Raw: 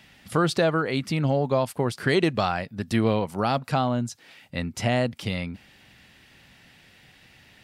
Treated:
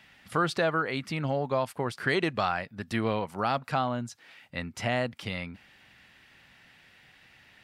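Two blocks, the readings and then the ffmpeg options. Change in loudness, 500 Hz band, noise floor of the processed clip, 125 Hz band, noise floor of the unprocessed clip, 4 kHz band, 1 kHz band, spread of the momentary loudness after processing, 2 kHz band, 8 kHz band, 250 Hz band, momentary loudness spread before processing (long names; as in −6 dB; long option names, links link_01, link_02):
−4.5 dB, −5.5 dB, −59 dBFS, −8.0 dB, −55 dBFS, −4.5 dB, −2.5 dB, 10 LU, −1.0 dB, −7.0 dB, −7.0 dB, 10 LU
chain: -af "equalizer=frequency=1500:width=0.55:gain=7.5,volume=-8dB"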